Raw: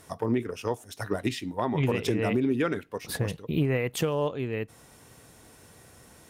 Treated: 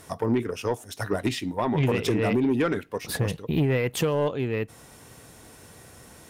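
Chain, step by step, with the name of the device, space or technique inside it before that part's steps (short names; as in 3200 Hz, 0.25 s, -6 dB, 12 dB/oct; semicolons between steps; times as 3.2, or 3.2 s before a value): saturation between pre-emphasis and de-emphasis (high shelf 4800 Hz +11.5 dB; soft clip -20 dBFS, distortion -17 dB; high shelf 4800 Hz -11.5 dB); gain +4.5 dB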